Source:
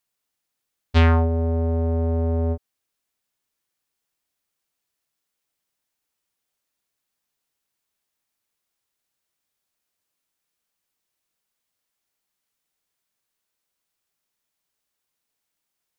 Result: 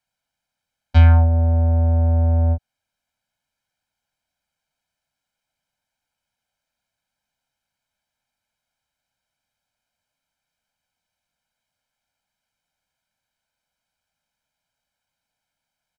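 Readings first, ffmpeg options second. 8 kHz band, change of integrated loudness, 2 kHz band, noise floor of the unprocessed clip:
no reading, +5.0 dB, -2.5 dB, -81 dBFS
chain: -filter_complex "[0:a]aemphasis=mode=reproduction:type=50kf,aecho=1:1:1.3:0.99,acrossover=split=120[s0][s1];[s1]acompressor=threshold=0.0398:ratio=2[s2];[s0][s2]amix=inputs=2:normalize=0,volume=1.19"

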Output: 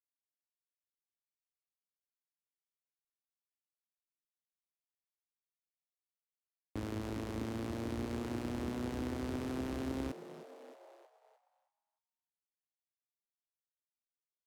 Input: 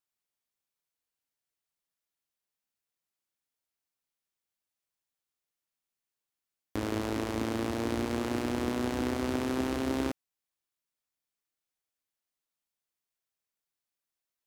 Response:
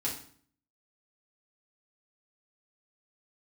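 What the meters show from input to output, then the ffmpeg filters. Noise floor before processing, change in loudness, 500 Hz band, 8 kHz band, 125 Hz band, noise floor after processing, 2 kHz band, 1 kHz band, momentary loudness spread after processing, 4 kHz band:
under -85 dBFS, -7.5 dB, -8.5 dB, -10.0 dB, -3.5 dB, under -85 dBFS, -10.0 dB, -9.5 dB, 14 LU, -10.0 dB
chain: -filter_complex "[0:a]acrossover=split=220[s0][s1];[s1]acompressor=threshold=0.00708:ratio=2[s2];[s0][s2]amix=inputs=2:normalize=0,asplit=8[s3][s4][s5][s6][s7][s8][s9][s10];[s4]adelay=311,afreqshift=94,volume=0.2[s11];[s5]adelay=622,afreqshift=188,volume=0.13[s12];[s6]adelay=933,afreqshift=282,volume=0.0841[s13];[s7]adelay=1244,afreqshift=376,volume=0.055[s14];[s8]adelay=1555,afreqshift=470,volume=0.0355[s15];[s9]adelay=1866,afreqshift=564,volume=0.0232[s16];[s10]adelay=2177,afreqshift=658,volume=0.015[s17];[s3][s11][s12][s13][s14][s15][s16][s17]amix=inputs=8:normalize=0,agate=range=0.0224:threshold=0.00282:ratio=3:detection=peak,volume=0.708"

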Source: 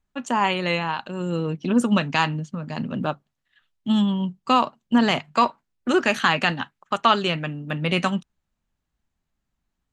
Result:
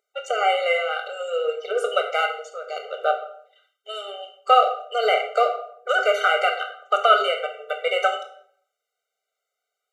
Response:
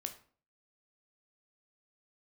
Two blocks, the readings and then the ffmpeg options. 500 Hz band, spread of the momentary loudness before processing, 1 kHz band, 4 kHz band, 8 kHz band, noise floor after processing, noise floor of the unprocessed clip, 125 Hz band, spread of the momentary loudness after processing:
+5.5 dB, 10 LU, +2.0 dB, -0.5 dB, no reading, -83 dBFS, -80 dBFS, under -40 dB, 16 LU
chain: -filter_complex "[0:a]acrossover=split=2600[s0][s1];[s1]acompressor=threshold=0.0126:ratio=4:attack=1:release=60[s2];[s0][s2]amix=inputs=2:normalize=0,acrossover=split=2900[s3][s4];[s4]asoftclip=type=tanh:threshold=0.0178[s5];[s3][s5]amix=inputs=2:normalize=0,aeval=exprs='val(0)+0.00141*(sin(2*PI*60*n/s)+sin(2*PI*2*60*n/s)/2+sin(2*PI*3*60*n/s)/3+sin(2*PI*4*60*n/s)/4+sin(2*PI*5*60*n/s)/5)':c=same[s6];[1:a]atrim=start_sample=2205,asetrate=29988,aresample=44100[s7];[s6][s7]afir=irnorm=-1:irlink=0,afftfilt=real='re*eq(mod(floor(b*sr/1024/390),2),1)':imag='im*eq(mod(floor(b*sr/1024/390),2),1)':win_size=1024:overlap=0.75,volume=2.24"

